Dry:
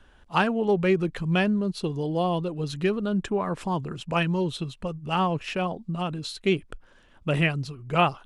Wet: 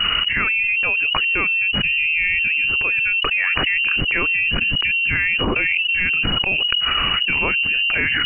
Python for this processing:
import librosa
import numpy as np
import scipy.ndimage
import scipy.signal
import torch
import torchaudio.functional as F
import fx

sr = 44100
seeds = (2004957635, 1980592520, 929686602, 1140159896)

y = fx.freq_invert(x, sr, carrier_hz=2900)
y = fx.low_shelf(y, sr, hz=110.0, db=7.5)
y = fx.env_flatten(y, sr, amount_pct=100)
y = y * 10.0 ** (-2.0 / 20.0)